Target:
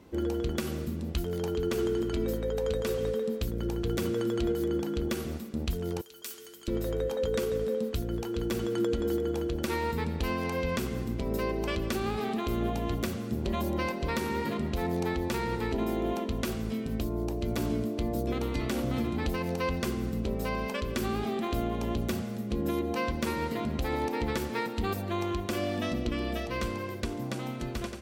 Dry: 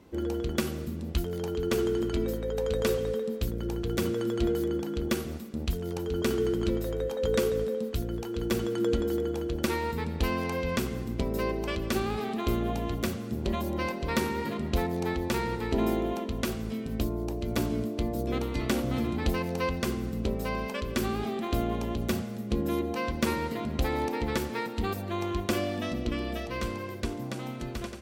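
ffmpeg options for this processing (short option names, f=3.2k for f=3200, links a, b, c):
-filter_complex "[0:a]asettb=1/sr,asplit=3[a][b][c];[a]atrim=end=6.014[d];[b]atrim=start=6.01:end=6.68,asetpts=PTS-STARTPTS,afade=t=in:d=0.004:c=qsin,afade=t=out:st=0.666:d=0.004:c=qsin,aderivative[e];[c]atrim=start=6.676[f];[d][e]acrossfade=d=0.004:c1=hsin:c2=qsin[g];[g][f]acrossfade=d=0.004:c1=qsin:c2=hsin,alimiter=limit=-21.5dB:level=0:latency=1:release=128,volume=1dB"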